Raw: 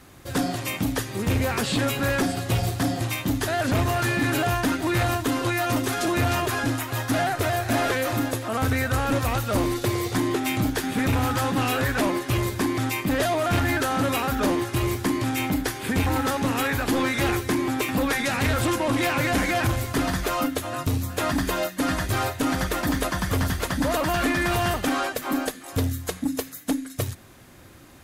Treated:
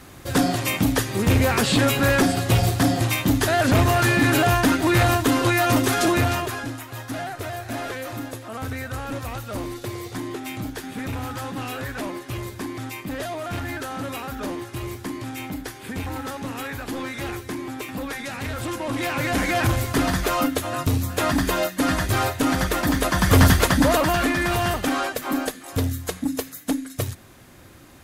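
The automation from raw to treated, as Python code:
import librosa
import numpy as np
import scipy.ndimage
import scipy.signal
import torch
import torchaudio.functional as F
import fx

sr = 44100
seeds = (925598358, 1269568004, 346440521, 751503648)

y = fx.gain(x, sr, db=fx.line((6.07, 5.0), (6.73, -7.0), (18.5, -7.0), (19.72, 3.0), (23.02, 3.0), (23.44, 11.0), (24.31, 1.0)))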